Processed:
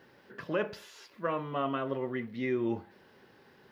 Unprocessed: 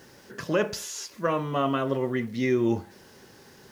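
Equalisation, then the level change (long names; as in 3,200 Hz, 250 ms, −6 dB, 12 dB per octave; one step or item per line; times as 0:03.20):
high-frequency loss of the air 450 metres
RIAA equalisation recording
low-shelf EQ 230 Hz +8 dB
−4.0 dB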